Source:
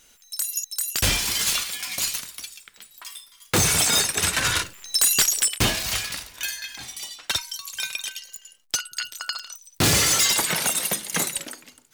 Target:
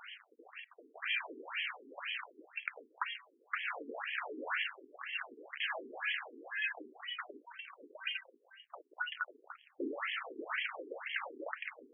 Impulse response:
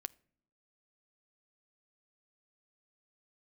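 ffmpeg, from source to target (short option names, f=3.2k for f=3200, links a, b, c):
-af "volume=32.5dB,asoftclip=hard,volume=-32.5dB,acompressor=threshold=-45dB:ratio=6,afftfilt=real='re*between(b*sr/1024,320*pow(2400/320,0.5+0.5*sin(2*PI*2*pts/sr))/1.41,320*pow(2400/320,0.5+0.5*sin(2*PI*2*pts/sr))*1.41)':imag='im*between(b*sr/1024,320*pow(2400/320,0.5+0.5*sin(2*PI*2*pts/sr))/1.41,320*pow(2400/320,0.5+0.5*sin(2*PI*2*pts/sr))*1.41)':win_size=1024:overlap=0.75,volume=16dB"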